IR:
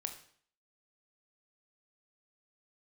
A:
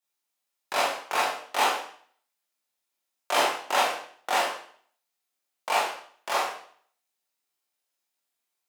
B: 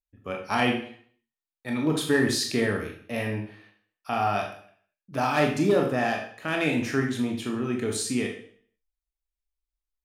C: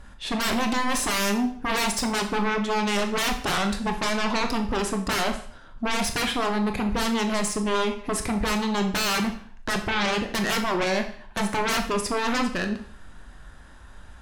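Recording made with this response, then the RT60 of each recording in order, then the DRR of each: C; 0.55, 0.55, 0.55 s; -7.0, 0.5, 5.0 dB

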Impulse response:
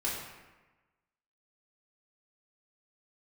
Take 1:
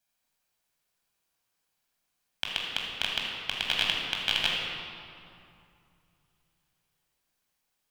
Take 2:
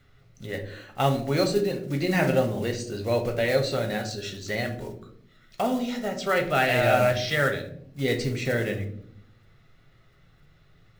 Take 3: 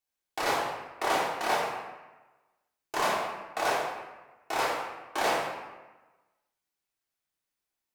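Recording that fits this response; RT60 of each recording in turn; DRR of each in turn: 3; 2.5, 0.65, 1.2 s; -2.5, 3.5, -7.0 dB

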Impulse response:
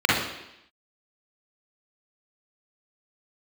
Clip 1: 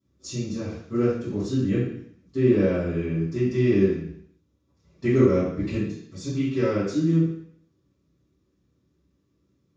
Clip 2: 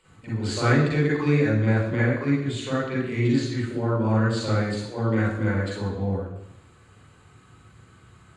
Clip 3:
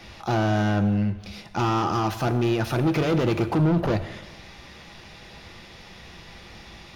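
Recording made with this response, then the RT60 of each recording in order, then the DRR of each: 2; 0.65, 0.85, 1.2 s; -17.0, -6.5, 8.5 dB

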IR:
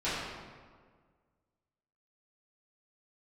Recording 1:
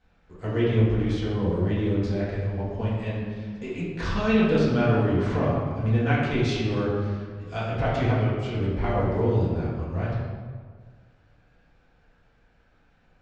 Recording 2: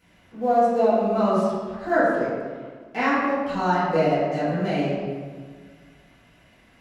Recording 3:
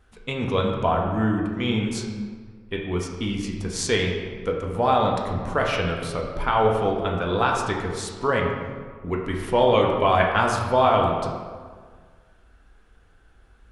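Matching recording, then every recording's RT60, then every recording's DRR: 2; 1.7, 1.7, 1.7 s; -9.0, -14.0, -1.0 dB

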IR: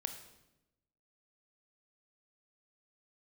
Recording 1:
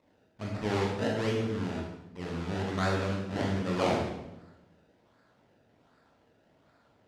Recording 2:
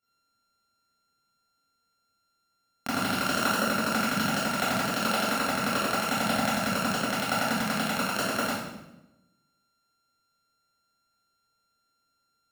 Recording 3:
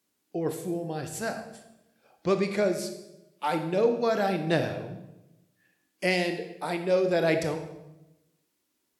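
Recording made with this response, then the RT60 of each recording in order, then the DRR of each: 3; 0.95, 0.90, 0.95 s; -2.5, -12.0, 6.5 dB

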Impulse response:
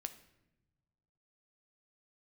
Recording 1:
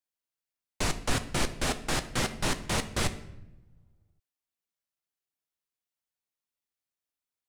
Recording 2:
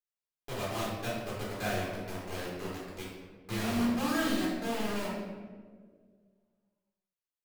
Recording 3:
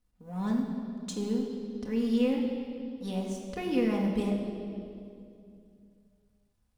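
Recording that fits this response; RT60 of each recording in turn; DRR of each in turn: 1; not exponential, 1.7 s, 2.6 s; 8.5, -8.0, -1.5 dB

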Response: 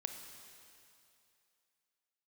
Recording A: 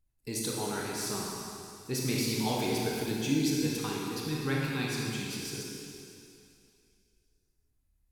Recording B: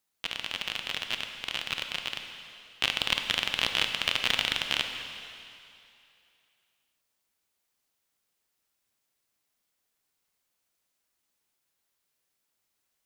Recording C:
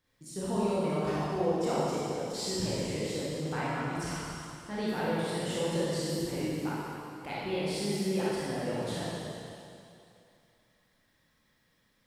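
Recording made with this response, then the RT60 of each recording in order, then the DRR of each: B; 2.6, 2.7, 2.6 s; -3.5, 5.0, -8.5 dB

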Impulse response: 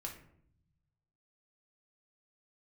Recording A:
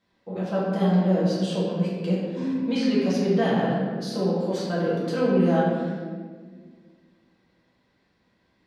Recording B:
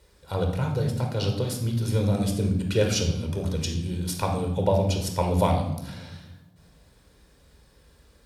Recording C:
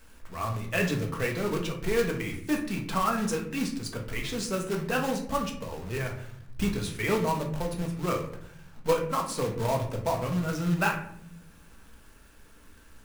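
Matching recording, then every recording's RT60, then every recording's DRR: C; 1.7, 1.0, 0.65 s; -8.5, 2.5, 0.5 dB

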